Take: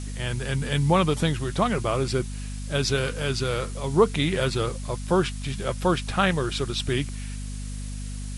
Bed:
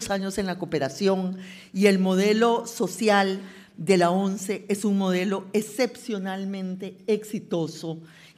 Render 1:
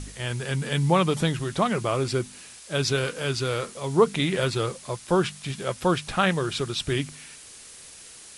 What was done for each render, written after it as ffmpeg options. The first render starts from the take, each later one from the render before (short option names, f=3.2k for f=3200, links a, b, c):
-af "bandreject=f=50:t=h:w=4,bandreject=f=100:t=h:w=4,bandreject=f=150:t=h:w=4,bandreject=f=200:t=h:w=4,bandreject=f=250:t=h:w=4"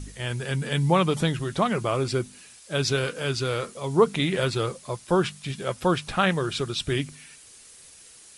-af "afftdn=nr=6:nf=-46"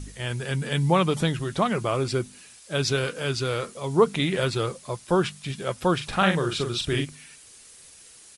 -filter_complex "[0:a]asplit=3[a][b][c];[a]afade=t=out:st=5.99:d=0.02[d];[b]asplit=2[e][f];[f]adelay=42,volume=-5.5dB[g];[e][g]amix=inputs=2:normalize=0,afade=t=in:st=5.99:d=0.02,afade=t=out:st=7.04:d=0.02[h];[c]afade=t=in:st=7.04:d=0.02[i];[d][h][i]amix=inputs=3:normalize=0"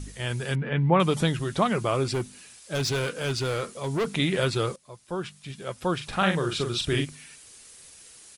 -filter_complex "[0:a]asettb=1/sr,asplit=3[a][b][c];[a]atrim=end=0.554[d];[b]atrim=start=0.55:end=1,asetpts=PTS-STARTPTS,afade=t=in:d=0.004:c=qsin,afade=t=out:st=0.446:d=0.004:c=qsin,lowpass=f=2.5k:w=0.5412,lowpass=f=2.5k:w=1.3066[e];[c]atrim=start=0.996[f];[d][e]acrossfade=d=0.004:c1=hsin:c2=qsin[g];[g][f]acrossfade=d=0.004:c1=qsin:c2=hsin,asettb=1/sr,asplit=3[h][i][j];[h]atrim=end=2.124[k];[i]atrim=start=2.12:end=4.08,asetpts=PTS-STARTPTS,afade=t=in:d=0.004:c=qsin,afade=t=out:st=1.956:d=0.004:c=qsin,asoftclip=type=hard:threshold=-23dB[l];[j]atrim=start=4.076[m];[k][l]acrossfade=d=0.004:c1=hsin:c2=qsin[n];[n][m]acrossfade=d=0.004:c1=qsin:c2=hsin,asplit=2[o][p];[o]atrim=end=4.76,asetpts=PTS-STARTPTS,afade=t=out:st=4.756:d=0.004:c=hsin:silence=0.149624[q];[p]atrim=start=4.76,asetpts=PTS-STARTPTS,afade=t=in:d=2.06:silence=0.149624[r];[q][r]concat=n=2:v=0:a=1"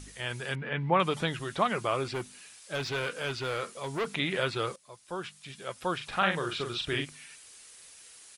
-filter_complex "[0:a]acrossover=split=3700[a][b];[b]acompressor=threshold=-48dB:ratio=4:attack=1:release=60[c];[a][c]amix=inputs=2:normalize=0,lowshelf=f=440:g=-11"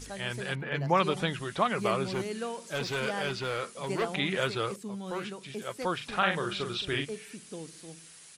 -filter_complex "[1:a]volume=-15.5dB[a];[0:a][a]amix=inputs=2:normalize=0"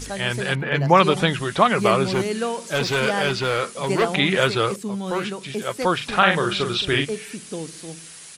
-af "volume=10.5dB,alimiter=limit=-2dB:level=0:latency=1"